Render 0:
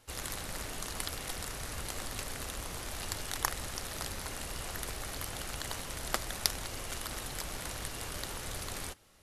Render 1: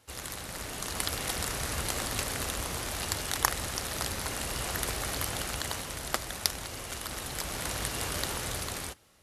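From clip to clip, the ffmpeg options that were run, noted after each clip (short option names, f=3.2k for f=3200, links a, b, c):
-af "highpass=46,dynaudnorm=f=200:g=9:m=7.5dB"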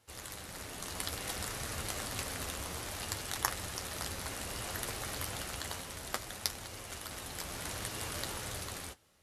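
-af "flanger=delay=8.7:depth=3:regen=-42:speed=0.61:shape=triangular,volume=-2dB"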